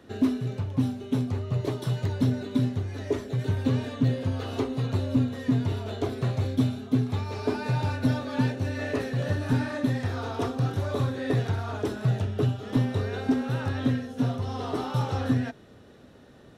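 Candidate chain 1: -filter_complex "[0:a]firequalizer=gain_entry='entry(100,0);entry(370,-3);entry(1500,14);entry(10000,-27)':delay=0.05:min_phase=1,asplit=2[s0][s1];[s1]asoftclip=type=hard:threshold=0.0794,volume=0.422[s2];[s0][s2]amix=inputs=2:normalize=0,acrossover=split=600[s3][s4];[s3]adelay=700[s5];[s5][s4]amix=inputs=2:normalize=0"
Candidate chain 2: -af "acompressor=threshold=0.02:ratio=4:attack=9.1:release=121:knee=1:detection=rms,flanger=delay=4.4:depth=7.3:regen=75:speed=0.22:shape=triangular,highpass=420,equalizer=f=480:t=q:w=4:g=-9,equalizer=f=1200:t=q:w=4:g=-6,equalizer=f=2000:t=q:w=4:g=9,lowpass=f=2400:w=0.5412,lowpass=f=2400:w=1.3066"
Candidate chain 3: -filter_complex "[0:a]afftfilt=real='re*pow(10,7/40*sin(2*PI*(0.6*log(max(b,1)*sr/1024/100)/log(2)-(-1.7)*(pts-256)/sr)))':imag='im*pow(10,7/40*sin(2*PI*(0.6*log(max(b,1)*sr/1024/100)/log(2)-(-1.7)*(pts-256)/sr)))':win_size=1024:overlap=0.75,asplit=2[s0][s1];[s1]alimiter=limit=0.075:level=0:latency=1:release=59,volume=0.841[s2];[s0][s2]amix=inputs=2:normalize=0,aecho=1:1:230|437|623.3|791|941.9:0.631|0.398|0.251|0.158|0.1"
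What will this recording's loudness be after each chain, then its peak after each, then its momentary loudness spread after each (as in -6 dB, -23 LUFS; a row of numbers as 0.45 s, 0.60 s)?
-24.5 LUFS, -49.0 LUFS, -21.5 LUFS; -9.5 dBFS, -31.5 dBFS, -7.5 dBFS; 5 LU, 7 LU, 3 LU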